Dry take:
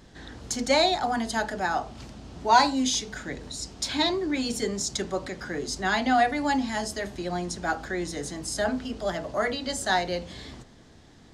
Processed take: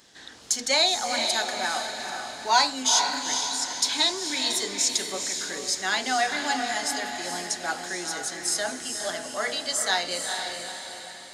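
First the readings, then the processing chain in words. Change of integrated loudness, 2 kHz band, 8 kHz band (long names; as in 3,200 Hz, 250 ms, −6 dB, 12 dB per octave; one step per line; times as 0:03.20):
+1.5 dB, +1.5 dB, +8.0 dB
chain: high-pass filter 560 Hz 6 dB per octave
high-shelf EQ 2,500 Hz +11 dB
on a send: feedback delay with all-pass diffusion 453 ms, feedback 48%, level −5 dB
on the sum: level −3 dB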